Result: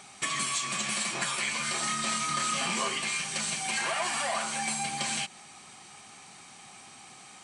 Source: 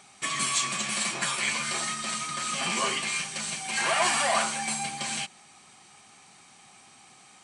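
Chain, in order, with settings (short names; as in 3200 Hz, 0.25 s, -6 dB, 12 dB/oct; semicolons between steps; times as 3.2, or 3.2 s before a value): compressor 6:1, threshold -32 dBFS, peak gain reduction 11.5 dB; 1.8–2.89 doubler 27 ms -5.5 dB; gain +4 dB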